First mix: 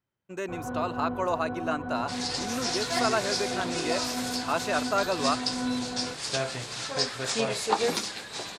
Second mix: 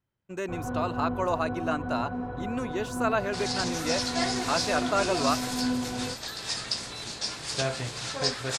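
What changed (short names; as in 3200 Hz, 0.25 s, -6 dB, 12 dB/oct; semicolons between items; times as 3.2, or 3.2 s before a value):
second sound: entry +1.25 s; master: add low shelf 110 Hz +10 dB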